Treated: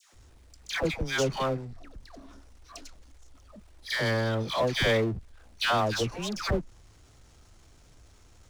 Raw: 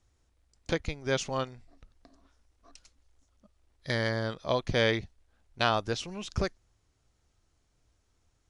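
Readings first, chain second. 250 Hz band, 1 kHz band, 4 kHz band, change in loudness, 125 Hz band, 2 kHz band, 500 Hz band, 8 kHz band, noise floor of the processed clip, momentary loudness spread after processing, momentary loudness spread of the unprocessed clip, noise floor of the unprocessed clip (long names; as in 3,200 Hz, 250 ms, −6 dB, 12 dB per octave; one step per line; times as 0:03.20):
+3.0 dB, +2.5 dB, +3.5 dB, +2.5 dB, +3.0 dB, +3.0 dB, +2.5 dB, +4.0 dB, −57 dBFS, 20 LU, 9 LU, −73 dBFS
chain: all-pass dispersion lows, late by 136 ms, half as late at 920 Hz
power curve on the samples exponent 0.7
level −1 dB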